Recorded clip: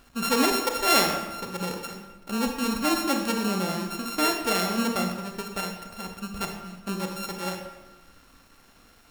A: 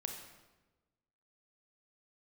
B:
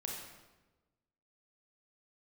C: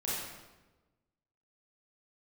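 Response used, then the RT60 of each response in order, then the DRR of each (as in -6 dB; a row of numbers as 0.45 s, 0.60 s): A; 1.2 s, 1.2 s, 1.2 s; 3.0 dB, -1.5 dB, -8.5 dB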